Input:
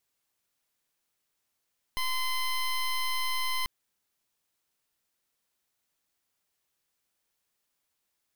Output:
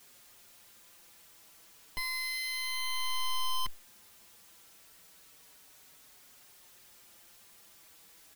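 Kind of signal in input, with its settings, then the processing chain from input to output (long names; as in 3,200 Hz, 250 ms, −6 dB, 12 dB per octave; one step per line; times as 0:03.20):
pulse wave 1,030 Hz, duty 14% −29 dBFS 1.69 s
converter with a step at zero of −49 dBFS
barber-pole flanger 5.1 ms −0.31 Hz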